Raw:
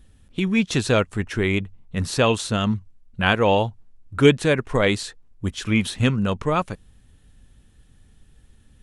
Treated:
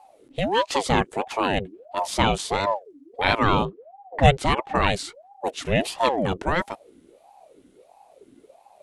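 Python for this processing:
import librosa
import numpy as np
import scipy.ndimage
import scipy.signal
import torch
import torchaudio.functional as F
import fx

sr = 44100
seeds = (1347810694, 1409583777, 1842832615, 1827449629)

y = fx.env_lowpass(x, sr, base_hz=2100.0, full_db=-12.5, at=(3.65, 4.91))
y = fx.ring_lfo(y, sr, carrier_hz=540.0, swing_pct=50, hz=1.5)
y = F.gain(torch.from_numpy(y), 1.0).numpy()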